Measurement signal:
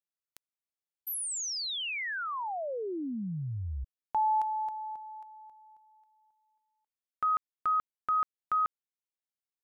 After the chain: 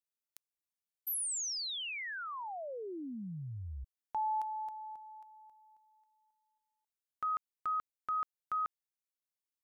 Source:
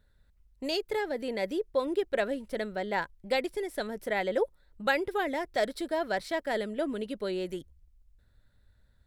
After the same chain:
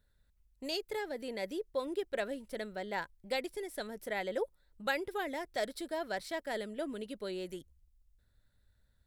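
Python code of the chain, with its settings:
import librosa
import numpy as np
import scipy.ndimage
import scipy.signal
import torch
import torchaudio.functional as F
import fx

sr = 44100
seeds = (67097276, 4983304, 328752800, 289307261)

y = fx.high_shelf(x, sr, hz=4500.0, db=7.0)
y = y * librosa.db_to_amplitude(-7.0)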